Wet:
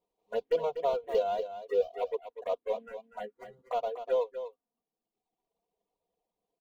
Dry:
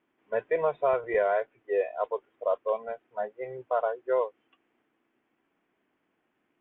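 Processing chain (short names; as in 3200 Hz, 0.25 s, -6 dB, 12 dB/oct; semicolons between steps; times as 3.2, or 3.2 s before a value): median filter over 25 samples; reverb removal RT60 1.1 s; comb 4.2 ms, depth 71%; envelope phaser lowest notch 260 Hz, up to 1800 Hz, full sweep at -23.5 dBFS; on a send: echo 0.244 s -10.5 dB; on the sum: gain -2.5 dB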